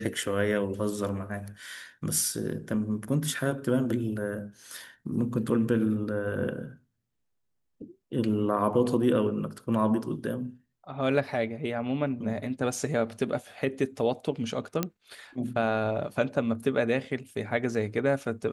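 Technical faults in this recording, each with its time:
14.83 s: pop -12 dBFS

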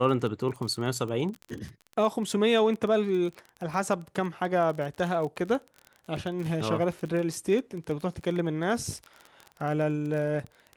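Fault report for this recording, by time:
crackle 27 per s -33 dBFS

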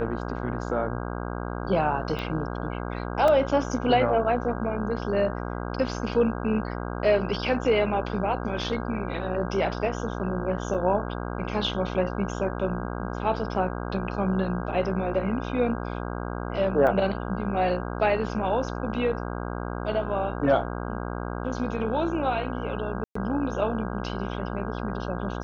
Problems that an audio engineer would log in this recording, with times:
buzz 60 Hz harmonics 27 -32 dBFS
2.19 s: pop -19 dBFS
3.28 s: dropout 2.4 ms
10.74 s: dropout 4.4 ms
16.87 s: dropout 4.5 ms
23.04–23.15 s: dropout 114 ms

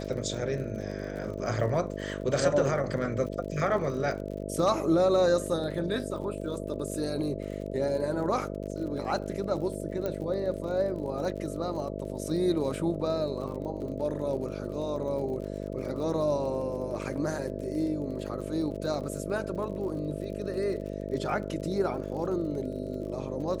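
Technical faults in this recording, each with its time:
buzz 50 Hz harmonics 13 -36 dBFS
crackle 47 per s -39 dBFS
10.06 s: pop -19 dBFS

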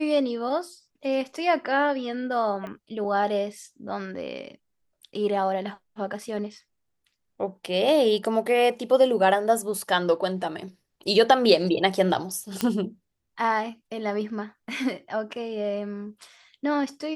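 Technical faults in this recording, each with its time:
2.67 s: pop -25 dBFS
12.61 s: pop -10 dBFS

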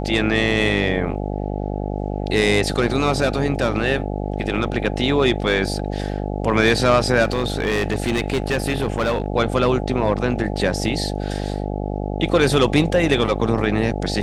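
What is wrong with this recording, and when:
buzz 50 Hz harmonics 17 -25 dBFS
7.23–9.28 s: clipped -15.5 dBFS

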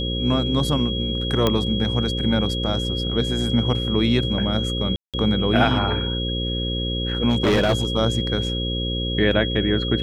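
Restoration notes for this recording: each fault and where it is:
buzz 60 Hz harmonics 9 -26 dBFS
whine 3.3 kHz -27 dBFS
1.47 s: pop -6 dBFS
4.96–5.14 s: dropout 177 ms
7.29–7.85 s: clipped -14 dBFS

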